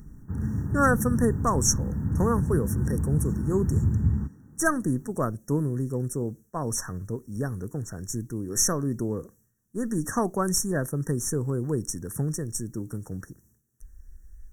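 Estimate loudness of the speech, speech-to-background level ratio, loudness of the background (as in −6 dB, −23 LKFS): −28.0 LKFS, 0.5 dB, −28.5 LKFS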